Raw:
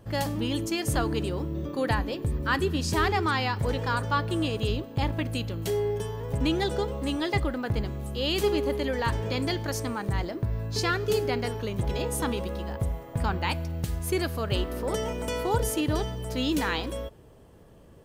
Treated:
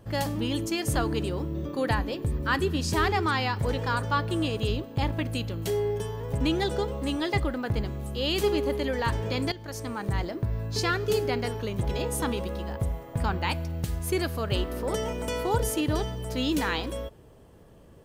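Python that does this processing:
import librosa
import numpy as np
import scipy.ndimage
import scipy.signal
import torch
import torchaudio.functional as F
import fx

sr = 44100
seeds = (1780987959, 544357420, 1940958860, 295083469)

y = fx.edit(x, sr, fx.fade_in_from(start_s=9.52, length_s=0.56, floor_db=-14.5), tone=tone)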